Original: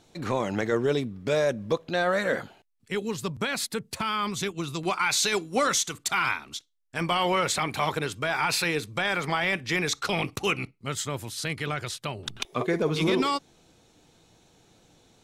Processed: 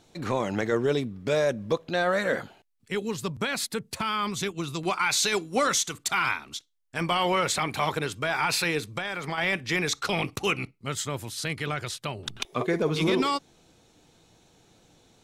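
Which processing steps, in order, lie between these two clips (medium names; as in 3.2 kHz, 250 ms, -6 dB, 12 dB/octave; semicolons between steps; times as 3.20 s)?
8.88–9.38 s: compression, threshold -28 dBFS, peak gain reduction 6.5 dB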